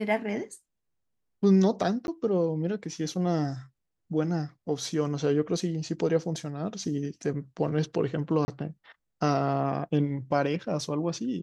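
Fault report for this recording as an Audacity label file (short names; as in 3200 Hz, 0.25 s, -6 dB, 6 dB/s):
2.070000	2.080000	gap 11 ms
8.450000	8.480000	gap 30 ms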